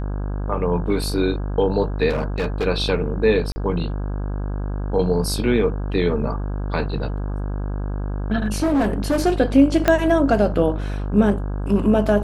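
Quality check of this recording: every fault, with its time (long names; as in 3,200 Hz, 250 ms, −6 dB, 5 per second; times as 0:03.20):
mains buzz 50 Hz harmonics 33 −25 dBFS
0:02.09–0:02.67: clipping −17.5 dBFS
0:03.52–0:03.56: drop-out 40 ms
0:08.44–0:09.27: clipping −15 dBFS
0:09.88: click −3 dBFS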